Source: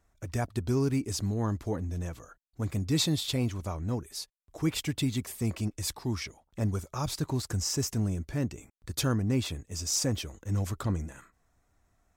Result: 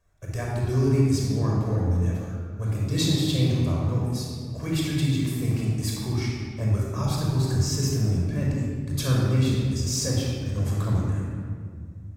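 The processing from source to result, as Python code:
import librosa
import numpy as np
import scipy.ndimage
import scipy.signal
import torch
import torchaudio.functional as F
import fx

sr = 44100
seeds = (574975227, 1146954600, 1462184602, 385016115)

y = fx.room_shoebox(x, sr, seeds[0], volume_m3=3400.0, walls='mixed', distance_m=5.5)
y = y * librosa.db_to_amplitude(-4.0)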